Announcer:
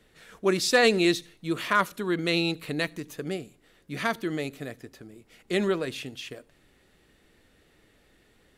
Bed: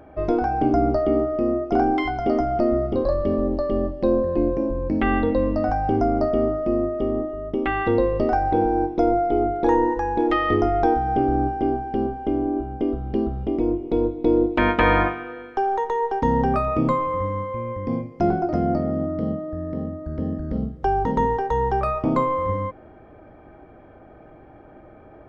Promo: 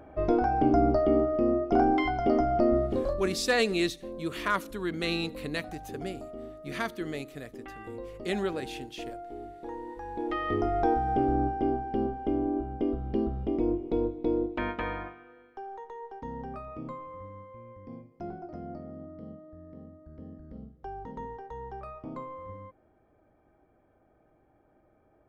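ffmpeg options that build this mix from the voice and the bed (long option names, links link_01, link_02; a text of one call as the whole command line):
ffmpeg -i stem1.wav -i stem2.wav -filter_complex "[0:a]adelay=2750,volume=-5dB[link_01];[1:a]volume=12dB,afade=type=out:start_time=2.76:duration=0.66:silence=0.133352,afade=type=in:start_time=9.84:duration=1.15:silence=0.16788,afade=type=out:start_time=13.75:duration=1.25:silence=0.211349[link_02];[link_01][link_02]amix=inputs=2:normalize=0" out.wav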